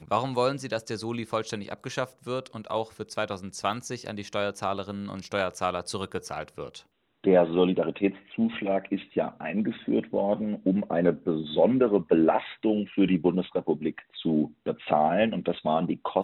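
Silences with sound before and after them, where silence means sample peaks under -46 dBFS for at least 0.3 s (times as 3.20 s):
6.81–7.24 s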